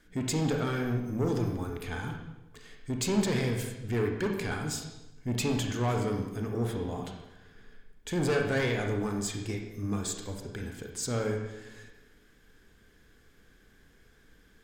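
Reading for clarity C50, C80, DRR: 4.0 dB, 6.5 dB, 2.0 dB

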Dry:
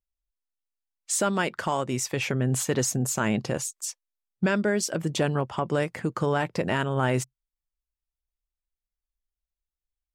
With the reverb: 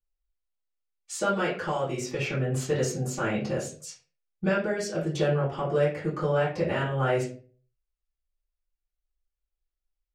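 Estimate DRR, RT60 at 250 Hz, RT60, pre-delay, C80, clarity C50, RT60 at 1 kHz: −11.0 dB, 0.50 s, 0.40 s, 3 ms, 11.5 dB, 6.5 dB, 0.35 s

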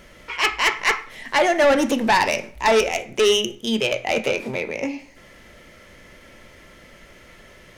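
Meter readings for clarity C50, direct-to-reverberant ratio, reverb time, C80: 15.5 dB, 8.0 dB, 0.55 s, 18.5 dB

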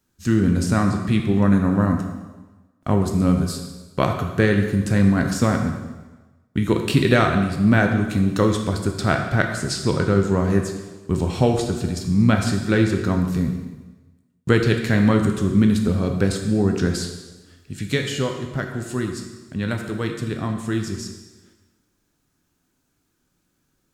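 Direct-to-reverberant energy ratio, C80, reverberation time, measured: 3.0 dB, 7.5 dB, 1.2 s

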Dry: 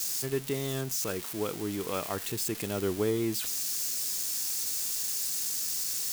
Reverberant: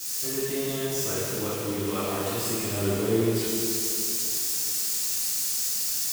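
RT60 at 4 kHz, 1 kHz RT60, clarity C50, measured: 2.6 s, 2.8 s, −3.5 dB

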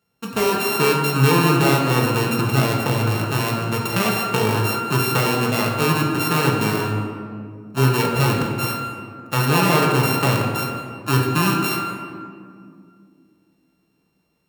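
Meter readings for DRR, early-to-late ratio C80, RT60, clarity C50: −2.0 dB, 4.0 dB, 2.2 s, 2.5 dB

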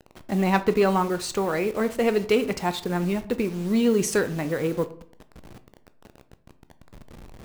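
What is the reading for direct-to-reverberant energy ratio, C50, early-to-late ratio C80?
11.0 dB, 15.5 dB, 19.5 dB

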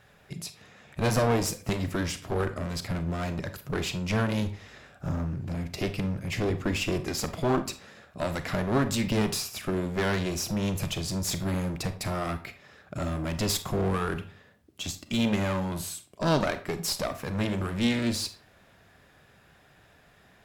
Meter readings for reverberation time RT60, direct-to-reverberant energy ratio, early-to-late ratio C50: 0.40 s, 9.5 dB, 12.5 dB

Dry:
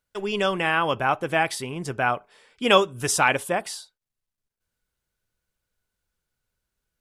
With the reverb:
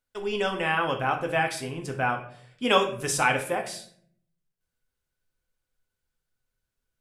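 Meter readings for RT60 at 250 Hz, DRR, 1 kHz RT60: 0.90 s, 3.0 dB, 0.50 s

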